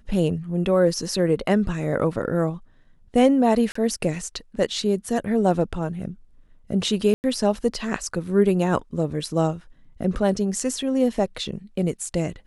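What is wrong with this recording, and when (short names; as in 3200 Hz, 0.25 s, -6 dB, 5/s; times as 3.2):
3.72–3.75 gap 34 ms
7.14–7.24 gap 99 ms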